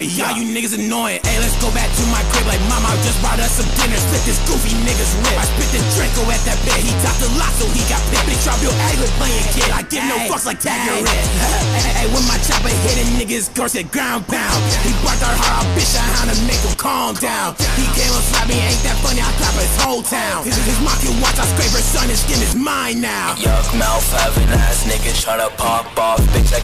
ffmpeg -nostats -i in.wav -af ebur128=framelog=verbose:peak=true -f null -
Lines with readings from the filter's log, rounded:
Integrated loudness:
  I:         -15.9 LUFS
  Threshold: -25.9 LUFS
Loudness range:
  LRA:         0.6 LU
  Threshold: -35.8 LUFS
  LRA low:   -16.2 LUFS
  LRA high:  -15.5 LUFS
True peak:
  Peak:       -5.0 dBFS